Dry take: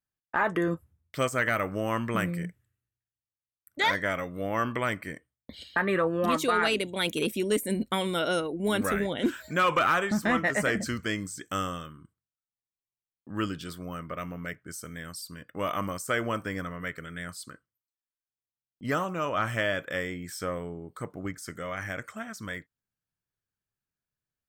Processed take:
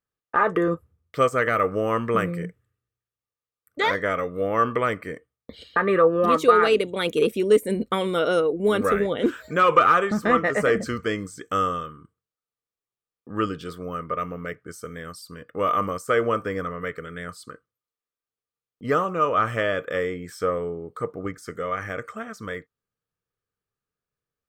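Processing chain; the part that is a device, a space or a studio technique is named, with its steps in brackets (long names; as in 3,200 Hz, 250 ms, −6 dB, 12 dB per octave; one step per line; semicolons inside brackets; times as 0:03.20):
inside a helmet (high-shelf EQ 4,900 Hz −7.5 dB; hollow resonant body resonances 460/1,200 Hz, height 12 dB, ringing for 35 ms)
level +2 dB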